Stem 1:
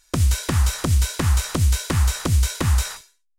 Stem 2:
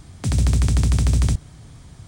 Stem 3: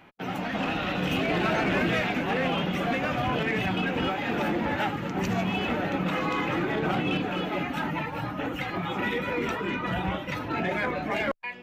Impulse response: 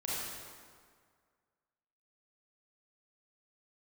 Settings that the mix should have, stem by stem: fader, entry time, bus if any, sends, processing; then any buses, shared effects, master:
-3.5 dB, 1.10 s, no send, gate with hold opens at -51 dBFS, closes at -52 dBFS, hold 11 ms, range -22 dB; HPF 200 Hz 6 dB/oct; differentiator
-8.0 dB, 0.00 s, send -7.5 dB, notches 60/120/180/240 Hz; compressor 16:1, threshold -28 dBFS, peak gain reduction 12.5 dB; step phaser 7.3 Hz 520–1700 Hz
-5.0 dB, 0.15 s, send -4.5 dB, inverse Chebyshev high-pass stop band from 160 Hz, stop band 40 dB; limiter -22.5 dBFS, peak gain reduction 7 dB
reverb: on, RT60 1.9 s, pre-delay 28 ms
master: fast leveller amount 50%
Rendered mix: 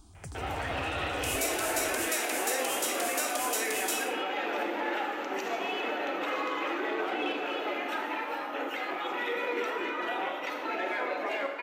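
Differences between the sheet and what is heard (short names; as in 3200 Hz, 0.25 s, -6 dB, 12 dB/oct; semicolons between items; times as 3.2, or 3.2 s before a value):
stem 2: send off; master: missing fast leveller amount 50%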